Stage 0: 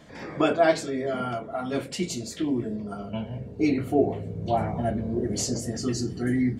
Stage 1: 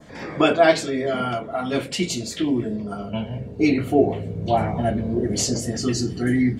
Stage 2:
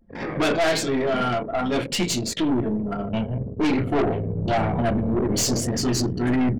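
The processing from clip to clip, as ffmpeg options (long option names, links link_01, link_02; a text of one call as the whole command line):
ffmpeg -i in.wav -af "adynamicequalizer=threshold=0.00501:dfrequency=3000:dqfactor=1.1:tfrequency=3000:tqfactor=1.1:attack=5:release=100:ratio=0.375:range=2.5:mode=boostabove:tftype=bell,volume=4.5dB" out.wav
ffmpeg -i in.wav -af "aeval=exprs='(tanh(14.1*val(0)+0.3)-tanh(0.3))/14.1':channel_layout=same,anlmdn=3.98,volume=5dB" out.wav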